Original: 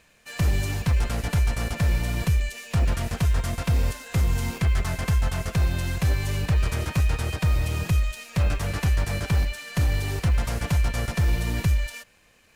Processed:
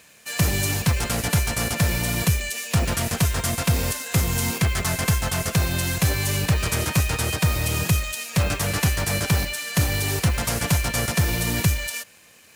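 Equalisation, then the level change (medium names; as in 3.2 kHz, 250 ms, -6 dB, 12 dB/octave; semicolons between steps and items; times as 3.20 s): high-pass 100 Hz 12 dB/octave; treble shelf 5.2 kHz +10.5 dB; +5.0 dB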